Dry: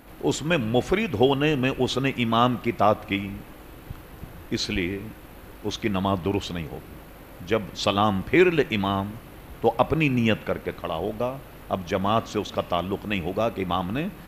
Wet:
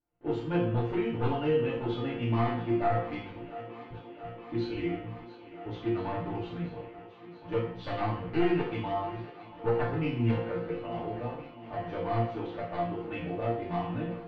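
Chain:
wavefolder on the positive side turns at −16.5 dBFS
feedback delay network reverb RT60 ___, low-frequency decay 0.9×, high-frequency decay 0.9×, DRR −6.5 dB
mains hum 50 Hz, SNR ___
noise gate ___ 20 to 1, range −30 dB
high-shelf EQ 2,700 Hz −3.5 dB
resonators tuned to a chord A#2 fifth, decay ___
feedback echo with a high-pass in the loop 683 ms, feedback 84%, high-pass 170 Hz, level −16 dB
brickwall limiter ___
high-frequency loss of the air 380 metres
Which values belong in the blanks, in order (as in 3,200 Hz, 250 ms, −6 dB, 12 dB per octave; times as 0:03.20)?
0.56 s, 33 dB, −32 dBFS, 0.28 s, −16 dBFS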